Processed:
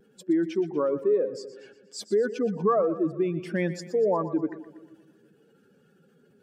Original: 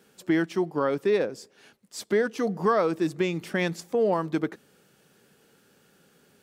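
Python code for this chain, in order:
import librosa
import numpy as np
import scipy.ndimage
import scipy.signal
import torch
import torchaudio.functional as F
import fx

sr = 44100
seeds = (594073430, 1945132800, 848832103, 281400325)

y = fx.spec_expand(x, sr, power=1.9)
y = fx.vibrato(y, sr, rate_hz=0.47, depth_cents=15.0)
y = fx.echo_split(y, sr, split_hz=380.0, low_ms=161, high_ms=120, feedback_pct=52, wet_db=-14.0)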